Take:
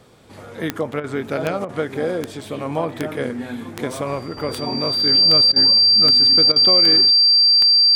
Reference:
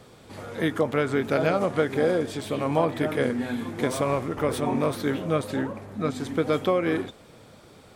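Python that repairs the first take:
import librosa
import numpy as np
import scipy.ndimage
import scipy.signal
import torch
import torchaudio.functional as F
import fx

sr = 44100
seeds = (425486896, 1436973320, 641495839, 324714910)

y = fx.fix_declick_ar(x, sr, threshold=10.0)
y = fx.notch(y, sr, hz=4700.0, q=30.0)
y = fx.fix_interpolate(y, sr, at_s=(1.0, 1.65, 5.52, 6.52), length_ms=39.0)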